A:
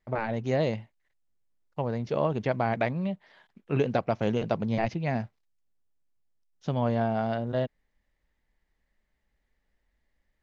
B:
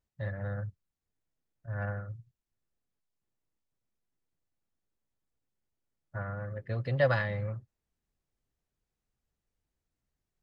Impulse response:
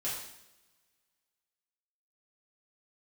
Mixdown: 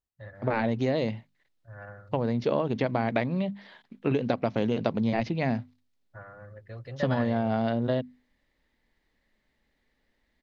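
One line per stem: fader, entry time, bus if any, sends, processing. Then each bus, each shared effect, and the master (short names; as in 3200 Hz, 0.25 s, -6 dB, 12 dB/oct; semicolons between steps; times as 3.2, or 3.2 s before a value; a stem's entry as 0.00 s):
-1.5 dB, 0.35 s, no send, ten-band EQ 125 Hz +8 dB, 250 Hz +11 dB, 500 Hz +5 dB, 1000 Hz +4 dB, 2000 Hz +5 dB, 4000 Hz +10 dB; compressor 6:1, threshold -19 dBFS, peak gain reduction 9.5 dB
-6.0 dB, 0.00 s, no send, dry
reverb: off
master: bell 160 Hz -5 dB 0.85 oct; notches 50/100/150/200/250 Hz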